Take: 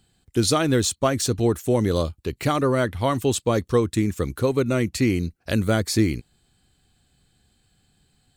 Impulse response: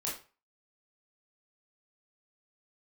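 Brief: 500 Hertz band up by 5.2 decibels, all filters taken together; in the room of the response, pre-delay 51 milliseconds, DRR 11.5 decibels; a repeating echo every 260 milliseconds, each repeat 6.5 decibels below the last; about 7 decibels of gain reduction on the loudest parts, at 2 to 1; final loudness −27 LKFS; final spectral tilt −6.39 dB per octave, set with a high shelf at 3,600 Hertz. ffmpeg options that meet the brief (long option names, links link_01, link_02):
-filter_complex "[0:a]equalizer=frequency=500:width_type=o:gain=6.5,highshelf=frequency=3600:gain=-7,acompressor=threshold=-24dB:ratio=2,aecho=1:1:260|520|780|1040|1300|1560:0.473|0.222|0.105|0.0491|0.0231|0.0109,asplit=2[link_01][link_02];[1:a]atrim=start_sample=2205,adelay=51[link_03];[link_02][link_03]afir=irnorm=-1:irlink=0,volume=-14dB[link_04];[link_01][link_04]amix=inputs=2:normalize=0,volume=-2.5dB"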